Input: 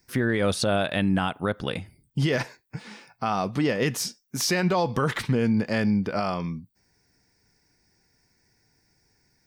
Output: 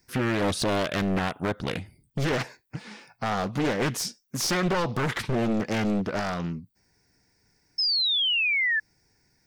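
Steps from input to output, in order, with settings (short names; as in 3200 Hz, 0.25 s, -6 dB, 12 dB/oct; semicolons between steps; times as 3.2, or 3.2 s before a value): one-sided fold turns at -22 dBFS; painted sound fall, 7.78–8.8, 1700–5300 Hz -24 dBFS; Doppler distortion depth 0.65 ms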